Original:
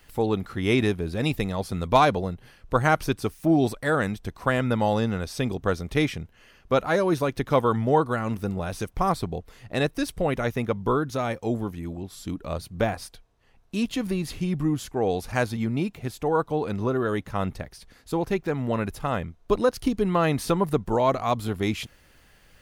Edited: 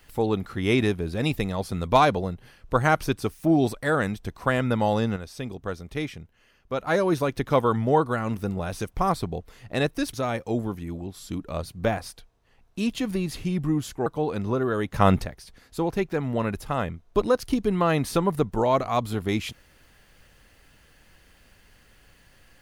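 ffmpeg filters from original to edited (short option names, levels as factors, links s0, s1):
-filter_complex "[0:a]asplit=7[s0][s1][s2][s3][s4][s5][s6];[s0]atrim=end=5.162[s7];[s1]atrim=start=5.158:end=6.872,asetpts=PTS-STARTPTS,volume=0.447[s8];[s2]atrim=start=6.868:end=10.132[s9];[s3]atrim=start=11.088:end=15.022[s10];[s4]atrim=start=16.398:end=17.282[s11];[s5]atrim=start=17.278:end=17.592,asetpts=PTS-STARTPTS,volume=2.82[s12];[s6]atrim=start=17.588[s13];[s7][s8]acrossfade=d=0.004:c1=hsin:c2=hsin[s14];[s14][s9]acrossfade=d=0.004:c1=hsin:c2=hsin[s15];[s15][s10]acrossfade=d=0.004:c1=hsin:c2=hsin[s16];[s16][s11]acrossfade=d=0.004:c1=hsin:c2=hsin[s17];[s17][s12]acrossfade=d=0.004:c1=hsin:c2=hsin[s18];[s18][s13]acrossfade=d=0.004:c1=hsin:c2=hsin"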